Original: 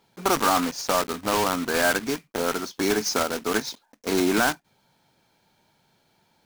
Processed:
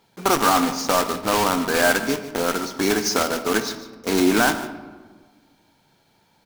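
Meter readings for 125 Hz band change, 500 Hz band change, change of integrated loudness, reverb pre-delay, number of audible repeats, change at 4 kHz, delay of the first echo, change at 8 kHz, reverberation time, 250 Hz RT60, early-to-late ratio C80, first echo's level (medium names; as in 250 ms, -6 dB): +4.0 dB, +3.0 dB, +3.5 dB, 4 ms, 1, +3.5 dB, 149 ms, +3.5 dB, 1.5 s, 1.9 s, 11.5 dB, -15.0 dB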